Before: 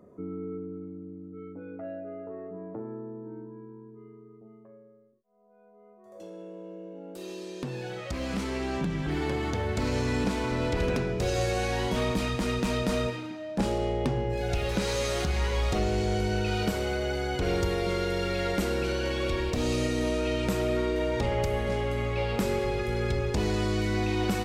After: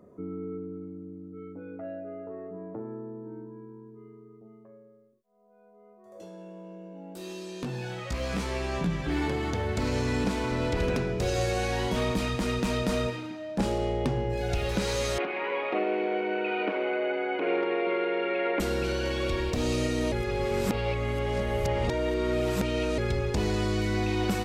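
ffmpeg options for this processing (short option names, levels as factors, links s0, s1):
-filter_complex "[0:a]asettb=1/sr,asplit=3[s0][s1][s2];[s0]atrim=end=6.204[s3];[s1]atrim=start=6.2:end=9.28,asetpts=PTS-STARTPTS,afade=t=in:d=0.004:c=qsin,afade=t=out:st=3.076:d=0.004:c=qsin,asplit=2[s4][s5];[s5]adelay=17,volume=0.668[s6];[s4][s6]amix=inputs=2:normalize=0,atrim=end_sample=135828[s7];[s2]atrim=start=9.276[s8];[s3][s7]acrossfade=d=0.004:c1=hsin:c2=qsin[s9];[s9][s8]acrossfade=d=0.004:c1=qsin:c2=hsin,asettb=1/sr,asplit=3[s10][s11][s12];[s10]atrim=end=15.184[s13];[s11]atrim=start=15.18:end=18.6,asetpts=PTS-STARTPTS,afade=t=in:d=0.004:c=qsin,afade=t=out:st=3.416:d=0.004:c=qsin,highpass=f=280:w=0.5412,highpass=f=280:w=1.3066,equalizer=f=310:t=q:w=4:g=5,equalizer=f=600:t=q:w=4:g=4,equalizer=f=1000:t=q:w=4:g=4,equalizer=f=2400:t=q:w=4:g=8,lowpass=f=2600:w=0.5412,lowpass=f=2600:w=1.3066[s14];[s12]atrim=start=18.596[s15];[s13][s14]acrossfade=d=0.004:c1=hsin:c2=qsin[s16];[s16][s15]acrossfade=d=0.004:c1=qsin:c2=hsin,asplit=3[s17][s18][s19];[s17]atrim=end=20.122[s20];[s18]atrim=start=20.118:end=22.982,asetpts=PTS-STARTPTS,areverse[s21];[s19]atrim=start=22.978[s22];[s20][s21]acrossfade=d=0.004:c1=hsin:c2=hsin[s23];[s23][s22]acrossfade=d=0.004:c1=hsin:c2=hsin"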